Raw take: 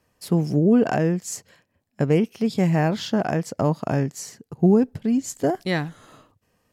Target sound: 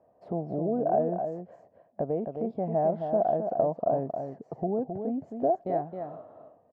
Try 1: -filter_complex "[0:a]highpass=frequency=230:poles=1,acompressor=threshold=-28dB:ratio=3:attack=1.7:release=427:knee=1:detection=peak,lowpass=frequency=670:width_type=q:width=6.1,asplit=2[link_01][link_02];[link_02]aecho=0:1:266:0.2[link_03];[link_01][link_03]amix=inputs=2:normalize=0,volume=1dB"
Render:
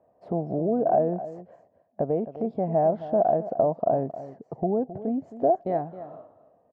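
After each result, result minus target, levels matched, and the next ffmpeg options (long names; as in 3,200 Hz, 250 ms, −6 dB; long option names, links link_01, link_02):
echo-to-direct −7.5 dB; downward compressor: peak gain reduction −4 dB
-filter_complex "[0:a]highpass=frequency=230:poles=1,acompressor=threshold=-28dB:ratio=3:attack=1.7:release=427:knee=1:detection=peak,lowpass=frequency=670:width_type=q:width=6.1,asplit=2[link_01][link_02];[link_02]aecho=0:1:266:0.473[link_03];[link_01][link_03]amix=inputs=2:normalize=0,volume=1dB"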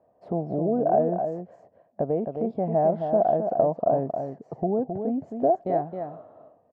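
downward compressor: peak gain reduction −4 dB
-filter_complex "[0:a]highpass=frequency=230:poles=1,acompressor=threshold=-34dB:ratio=3:attack=1.7:release=427:knee=1:detection=peak,lowpass=frequency=670:width_type=q:width=6.1,asplit=2[link_01][link_02];[link_02]aecho=0:1:266:0.473[link_03];[link_01][link_03]amix=inputs=2:normalize=0,volume=1dB"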